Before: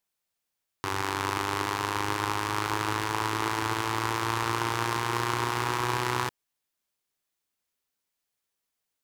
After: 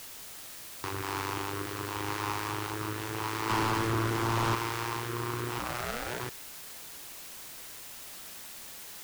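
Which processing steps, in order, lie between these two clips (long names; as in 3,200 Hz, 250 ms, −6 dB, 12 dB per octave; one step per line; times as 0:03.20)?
0:03.49–0:04.55: leveller curve on the samples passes 3
0:05.58–0:06.19: ring modulation 160 Hz → 570 Hz
rotating-speaker cabinet horn 6.7 Hz, later 0.85 Hz, at 0:00.32
in parallel at −4.5 dB: bit-depth reduction 6 bits, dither triangular
on the sum: soft clipping −19 dBFS, distortion −10 dB
level −4.5 dB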